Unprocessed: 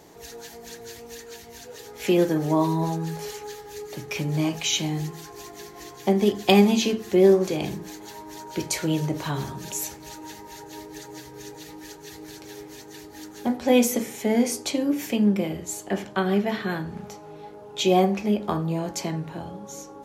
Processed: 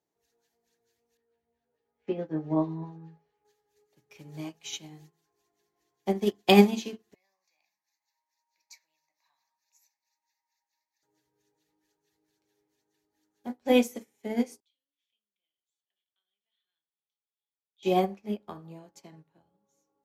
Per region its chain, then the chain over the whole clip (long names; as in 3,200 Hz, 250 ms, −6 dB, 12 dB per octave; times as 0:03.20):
0:01.17–0:03.45: head-to-tape spacing loss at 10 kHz 37 dB + double-tracking delay 13 ms −4 dB
0:07.14–0:11.03: high-pass filter 1,300 Hz + phaser with its sweep stopped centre 2,100 Hz, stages 8
0:14.60–0:17.83: downward compressor 2 to 1, threshold −27 dBFS + resonant band-pass 3,400 Hz, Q 8.2
whole clip: low-shelf EQ 73 Hz −7.5 dB; expander for the loud parts 2.5 to 1, over −38 dBFS; level +1.5 dB